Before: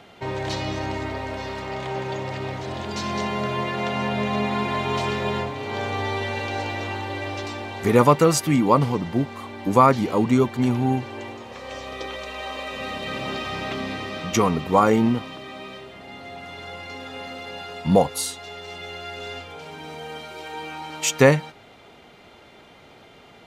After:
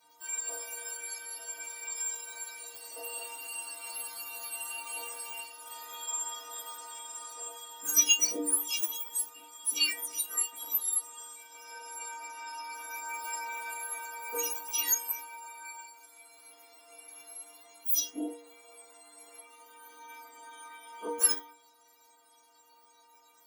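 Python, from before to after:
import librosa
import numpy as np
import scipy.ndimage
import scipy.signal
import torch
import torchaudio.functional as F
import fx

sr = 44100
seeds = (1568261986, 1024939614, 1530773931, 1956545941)

y = fx.octave_mirror(x, sr, pivot_hz=1700.0)
y = fx.high_shelf(y, sr, hz=5300.0, db=11.0)
y = fx.stiff_resonator(y, sr, f0_hz=140.0, decay_s=0.65, stiffness=0.03)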